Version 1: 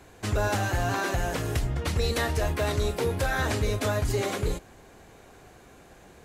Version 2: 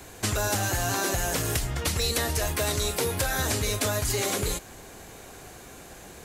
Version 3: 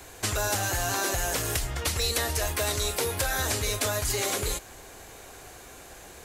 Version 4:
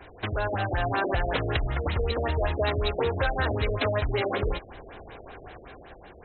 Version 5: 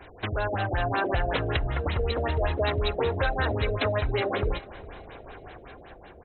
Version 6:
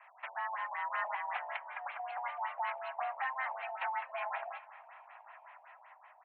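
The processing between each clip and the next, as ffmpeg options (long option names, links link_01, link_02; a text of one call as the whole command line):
ffmpeg -i in.wav -filter_complex "[0:a]highshelf=frequency=4500:gain=11,acrossover=split=750|4400[link_01][link_02][link_03];[link_01]acompressor=threshold=-33dB:ratio=4[link_04];[link_02]acompressor=threshold=-37dB:ratio=4[link_05];[link_03]acompressor=threshold=-34dB:ratio=4[link_06];[link_04][link_05][link_06]amix=inputs=3:normalize=0,volume=5dB" out.wav
ffmpeg -i in.wav -af "equalizer=frequency=180:width_type=o:width=1.5:gain=-7.5" out.wav
ffmpeg -i in.wav -af "dynaudnorm=framelen=140:gausssize=9:maxgain=3.5dB,afftfilt=real='re*lt(b*sr/1024,680*pow(4200/680,0.5+0.5*sin(2*PI*5.3*pts/sr)))':imag='im*lt(b*sr/1024,680*pow(4200/680,0.5+0.5*sin(2*PI*5.3*pts/sr)))':win_size=1024:overlap=0.75,volume=1dB" out.wav
ffmpeg -i in.wav -af "aecho=1:1:408|816|1224:0.0891|0.033|0.0122" out.wav
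ffmpeg -i in.wav -af "highpass=frequency=460:width_type=q:width=0.5412,highpass=frequency=460:width_type=q:width=1.307,lowpass=frequency=2300:width_type=q:width=0.5176,lowpass=frequency=2300:width_type=q:width=0.7071,lowpass=frequency=2300:width_type=q:width=1.932,afreqshift=260,volume=-8dB" out.wav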